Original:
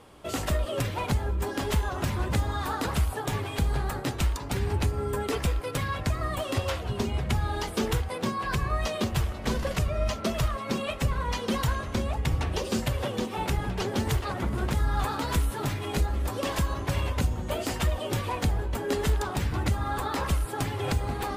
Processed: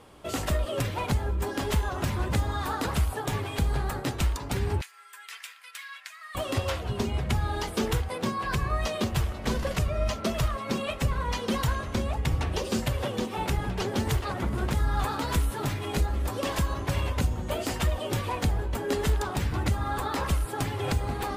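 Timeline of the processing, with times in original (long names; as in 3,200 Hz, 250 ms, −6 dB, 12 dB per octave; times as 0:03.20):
0:04.81–0:06.35: four-pole ladder high-pass 1,400 Hz, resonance 30%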